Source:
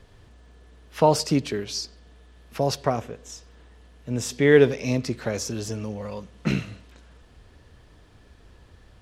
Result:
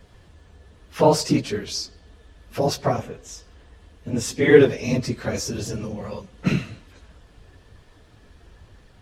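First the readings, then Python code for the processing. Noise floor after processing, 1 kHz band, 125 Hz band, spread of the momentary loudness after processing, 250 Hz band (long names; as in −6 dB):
−52 dBFS, +1.0 dB, +2.0 dB, 23 LU, +2.5 dB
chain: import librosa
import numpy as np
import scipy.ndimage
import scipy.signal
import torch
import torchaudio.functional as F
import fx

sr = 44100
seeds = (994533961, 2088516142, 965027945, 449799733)

y = fx.phase_scramble(x, sr, seeds[0], window_ms=50)
y = y * 10.0 ** (2.0 / 20.0)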